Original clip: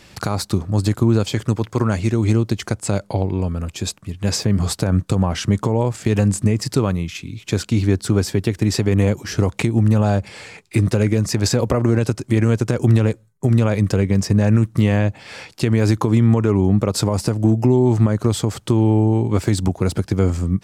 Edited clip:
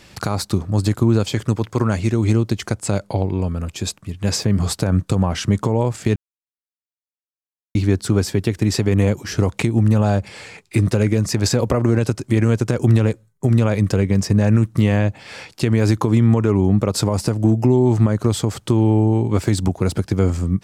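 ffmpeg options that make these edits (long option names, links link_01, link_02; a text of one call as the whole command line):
ffmpeg -i in.wav -filter_complex "[0:a]asplit=3[link_01][link_02][link_03];[link_01]atrim=end=6.16,asetpts=PTS-STARTPTS,afade=type=out:start_time=6.156:duration=0.004:curve=hsin[link_04];[link_02]atrim=start=6.16:end=7.75,asetpts=PTS-STARTPTS,volume=0[link_05];[link_03]atrim=start=7.75,asetpts=PTS-STARTPTS,afade=type=in:duration=0.004:curve=hsin[link_06];[link_04][link_05][link_06]concat=n=3:v=0:a=1" out.wav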